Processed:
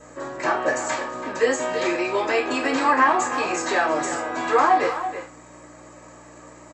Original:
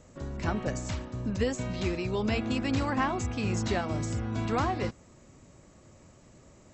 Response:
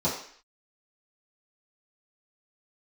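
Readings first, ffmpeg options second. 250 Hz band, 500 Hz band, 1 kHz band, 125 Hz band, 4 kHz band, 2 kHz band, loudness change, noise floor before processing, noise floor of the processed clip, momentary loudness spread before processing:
+2.0 dB, +10.5 dB, +14.0 dB, -14.5 dB, +6.5 dB, +13.5 dB, +9.0 dB, -57 dBFS, -46 dBFS, 6 LU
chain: -filter_complex "[0:a]highpass=700,asplit=2[a][b];[b]alimiter=level_in=4.5dB:limit=-24dB:level=0:latency=1:release=226,volume=-4.5dB,volume=2.5dB[c];[a][c]amix=inputs=2:normalize=0,aeval=exprs='val(0)+0.002*(sin(2*PI*60*n/s)+sin(2*PI*2*60*n/s)/2+sin(2*PI*3*60*n/s)/3+sin(2*PI*4*60*n/s)/4+sin(2*PI*5*60*n/s)/5)':c=same,asplit=2[d][e];[e]adelay=330,highpass=300,lowpass=3.4k,asoftclip=type=hard:threshold=-24.5dB,volume=-9dB[f];[d][f]amix=inputs=2:normalize=0[g];[1:a]atrim=start_sample=2205,asetrate=79380,aresample=44100[h];[g][h]afir=irnorm=-1:irlink=0"

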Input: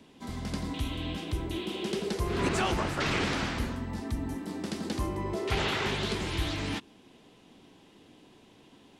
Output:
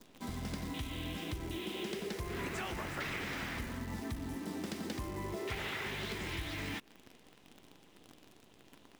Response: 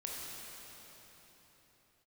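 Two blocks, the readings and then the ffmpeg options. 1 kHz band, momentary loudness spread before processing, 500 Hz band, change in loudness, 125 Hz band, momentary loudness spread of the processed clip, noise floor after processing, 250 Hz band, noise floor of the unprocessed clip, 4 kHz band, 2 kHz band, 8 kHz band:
-9.5 dB, 8 LU, -9.0 dB, -8.0 dB, -8.5 dB, 4 LU, -62 dBFS, -7.5 dB, -58 dBFS, -8.0 dB, -5.5 dB, -6.5 dB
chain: -af "bandreject=f=4.4k:w=24,adynamicequalizer=threshold=0.00316:dfrequency=2000:dqfactor=2.1:tfrequency=2000:tqfactor=2.1:attack=5:release=100:ratio=0.375:range=3.5:mode=boostabove:tftype=bell,acompressor=threshold=-35dB:ratio=10,acrusher=bits=9:dc=4:mix=0:aa=0.000001,volume=-1dB"

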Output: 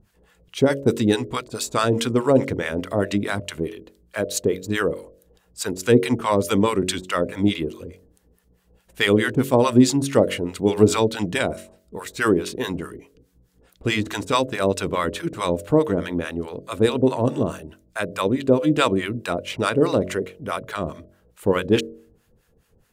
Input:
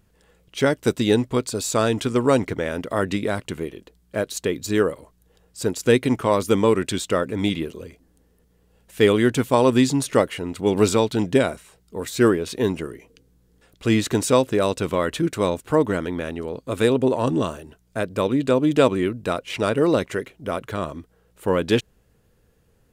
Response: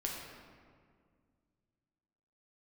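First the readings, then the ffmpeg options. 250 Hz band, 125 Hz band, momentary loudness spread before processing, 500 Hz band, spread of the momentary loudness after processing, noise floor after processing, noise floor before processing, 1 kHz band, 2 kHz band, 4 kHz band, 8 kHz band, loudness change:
0.0 dB, +0.5 dB, 11 LU, -1.0 dB, 13 LU, -62 dBFS, -62 dBFS, +0.5 dB, +1.5 dB, +1.5 dB, 0.0 dB, 0.0 dB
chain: -filter_complex "[0:a]acrossover=split=760[a][b];[a]aeval=exprs='val(0)*(1-1/2+1/2*cos(2*PI*4.7*n/s))':c=same[c];[b]aeval=exprs='val(0)*(1-1/2-1/2*cos(2*PI*4.7*n/s))':c=same[d];[c][d]amix=inputs=2:normalize=0,bandreject=f=46.11:t=h:w=4,bandreject=f=92.22:t=h:w=4,bandreject=f=138.33:t=h:w=4,bandreject=f=184.44:t=h:w=4,bandreject=f=230.55:t=h:w=4,bandreject=f=276.66:t=h:w=4,bandreject=f=322.77:t=h:w=4,bandreject=f=368.88:t=h:w=4,bandreject=f=414.99:t=h:w=4,bandreject=f=461.1:t=h:w=4,bandreject=f=507.21:t=h:w=4,bandreject=f=553.32:t=h:w=4,bandreject=f=599.43:t=h:w=4,bandreject=f=645.54:t=h:w=4,volume=5.5dB"

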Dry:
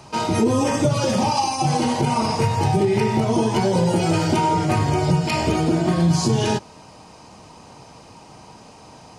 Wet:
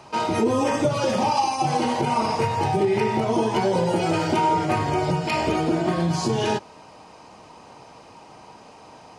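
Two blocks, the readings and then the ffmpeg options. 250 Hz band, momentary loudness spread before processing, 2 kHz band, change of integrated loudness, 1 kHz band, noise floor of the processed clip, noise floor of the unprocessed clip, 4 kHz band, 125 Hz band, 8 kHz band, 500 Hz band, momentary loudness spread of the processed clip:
-4.0 dB, 2 LU, -0.5 dB, -2.5 dB, 0.0 dB, -47 dBFS, -45 dBFS, -3.5 dB, -7.0 dB, -6.0 dB, -1.0 dB, 2 LU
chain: -af "bass=f=250:g=-8,treble=f=4k:g=-7"

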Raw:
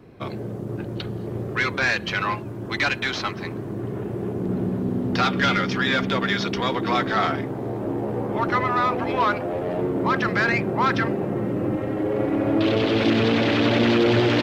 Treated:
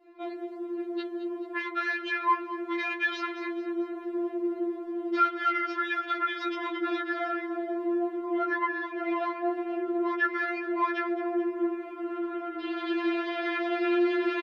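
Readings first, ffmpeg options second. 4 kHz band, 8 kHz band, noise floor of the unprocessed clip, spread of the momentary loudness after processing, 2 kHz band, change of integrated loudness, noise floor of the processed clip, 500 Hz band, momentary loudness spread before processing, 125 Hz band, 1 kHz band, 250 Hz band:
-13.5 dB, n/a, -33 dBFS, 8 LU, -6.5 dB, -7.0 dB, -41 dBFS, -7.0 dB, 11 LU, under -40 dB, -5.5 dB, -6.5 dB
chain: -filter_complex "[0:a]adynamicequalizer=threshold=0.0141:dfrequency=1600:dqfactor=1.4:tfrequency=1600:tqfactor=1.4:attack=5:release=100:ratio=0.375:range=3.5:mode=boostabove:tftype=bell,acompressor=threshold=-21dB:ratio=6,acrossover=split=210 3700:gain=0.0708 1 0.224[a][b][c];[a][b][c]amix=inputs=3:normalize=0,aecho=1:1:218|436|654|872|1090:0.2|0.0998|0.0499|0.0249|0.0125,afftfilt=real='re*4*eq(mod(b,16),0)':imag='im*4*eq(mod(b,16),0)':win_size=2048:overlap=0.75,volume=-3dB"

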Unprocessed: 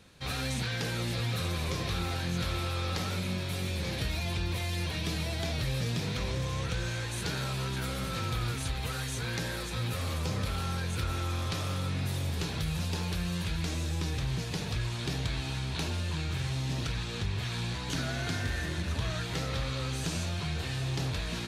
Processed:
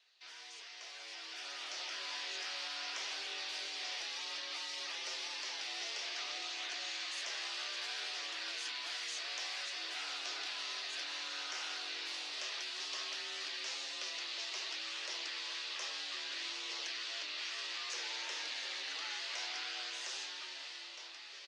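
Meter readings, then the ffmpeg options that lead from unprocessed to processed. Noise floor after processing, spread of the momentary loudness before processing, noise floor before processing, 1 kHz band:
-51 dBFS, 2 LU, -36 dBFS, -8.5 dB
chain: -filter_complex "[0:a]lowpass=f=4.5k:w=0.5412,lowpass=f=4.5k:w=1.3066,aderivative,acrossover=split=180|1200|3000[a][b][c][d];[c]alimiter=level_in=23.5dB:limit=-24dB:level=0:latency=1:release=18,volume=-23.5dB[e];[a][b][e][d]amix=inputs=4:normalize=0,afftfilt=real='re*lt(hypot(re,im),0.00891)':imag='im*lt(hypot(re,im),0.00891)':win_size=1024:overlap=0.75,dynaudnorm=f=430:g=7:m=10.5dB,highpass=56,lowshelf=f=150:g=-10,afreqshift=210,aecho=1:1:424:0.188,flanger=delay=0.1:depth=1.5:regen=-82:speed=0.6:shape=sinusoidal,volume=5dB"

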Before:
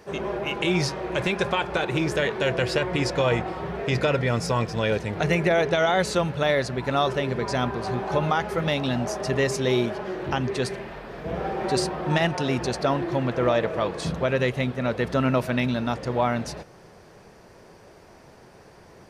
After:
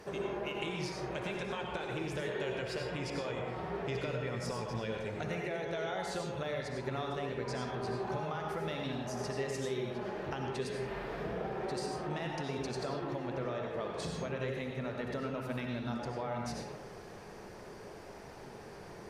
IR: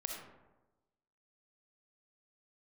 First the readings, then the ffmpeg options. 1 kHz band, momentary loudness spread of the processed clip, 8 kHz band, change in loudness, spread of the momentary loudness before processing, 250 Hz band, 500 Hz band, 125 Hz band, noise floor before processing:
-12.5 dB, 11 LU, -12.0 dB, -13.0 dB, 6 LU, -12.5 dB, -12.5 dB, -13.0 dB, -50 dBFS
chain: -filter_complex "[0:a]acompressor=threshold=-36dB:ratio=6[a];[1:a]atrim=start_sample=2205,afade=t=out:st=0.21:d=0.01,atrim=end_sample=9702,asetrate=28665,aresample=44100[b];[a][b]afir=irnorm=-1:irlink=0,volume=-1.5dB"

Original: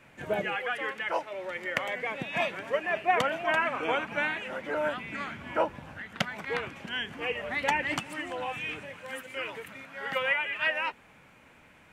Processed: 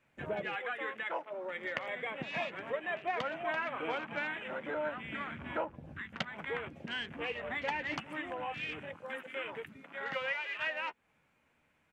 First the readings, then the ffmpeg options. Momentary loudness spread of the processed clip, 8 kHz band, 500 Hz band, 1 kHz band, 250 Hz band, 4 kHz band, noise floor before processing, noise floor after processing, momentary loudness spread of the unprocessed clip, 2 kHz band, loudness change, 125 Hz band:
6 LU, under -10 dB, -6.5 dB, -7.5 dB, -5.0 dB, -7.0 dB, -57 dBFS, -73 dBFS, 10 LU, -6.5 dB, -7.0 dB, -5.0 dB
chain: -filter_complex "[0:a]afwtdn=0.00891,acompressor=threshold=-39dB:ratio=2,asplit=2[a][b];[b]adelay=13,volume=-13.5dB[c];[a][c]amix=inputs=2:normalize=0"

